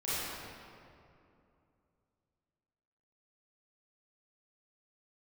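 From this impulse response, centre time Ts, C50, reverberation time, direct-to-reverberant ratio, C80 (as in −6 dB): 184 ms, −6.5 dB, 2.6 s, −13.0 dB, −3.0 dB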